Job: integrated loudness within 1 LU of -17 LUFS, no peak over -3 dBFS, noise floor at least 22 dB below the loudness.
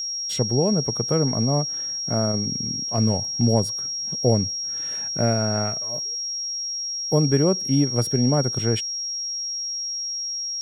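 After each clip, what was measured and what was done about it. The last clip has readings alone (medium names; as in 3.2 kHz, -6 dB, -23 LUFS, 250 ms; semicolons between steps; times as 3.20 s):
steady tone 5.6 kHz; tone level -26 dBFS; loudness -22.5 LUFS; peak level -5.5 dBFS; loudness target -17.0 LUFS
-> band-stop 5.6 kHz, Q 30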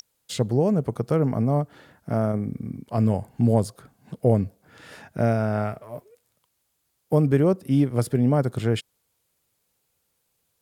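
steady tone not found; loudness -24.0 LUFS; peak level -6.5 dBFS; loudness target -17.0 LUFS
-> trim +7 dB; peak limiter -3 dBFS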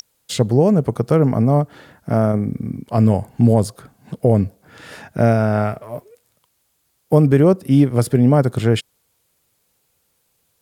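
loudness -17.0 LUFS; peak level -3.0 dBFS; noise floor -67 dBFS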